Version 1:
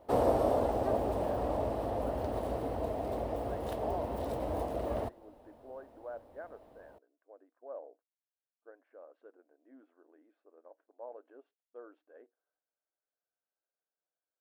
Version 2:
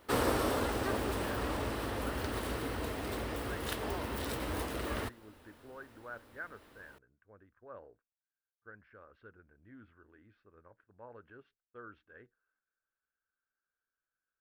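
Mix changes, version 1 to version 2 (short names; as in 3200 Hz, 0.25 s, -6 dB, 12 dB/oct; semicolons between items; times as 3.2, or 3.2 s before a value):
speech: remove brick-wall FIR high-pass 250 Hz; master: add EQ curve 400 Hz 0 dB, 670 Hz -11 dB, 1400 Hz +12 dB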